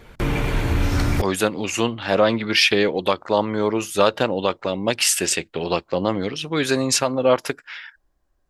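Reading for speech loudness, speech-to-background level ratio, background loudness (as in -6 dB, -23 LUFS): -21.0 LUFS, 2.5 dB, -23.5 LUFS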